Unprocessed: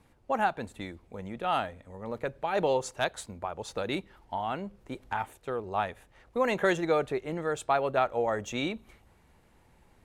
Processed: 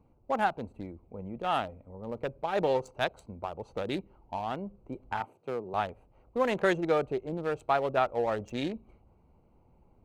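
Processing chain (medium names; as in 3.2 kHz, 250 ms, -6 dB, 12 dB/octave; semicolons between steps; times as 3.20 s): local Wiener filter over 25 samples; 5.20–5.74 s: high-pass 120 Hz 24 dB/octave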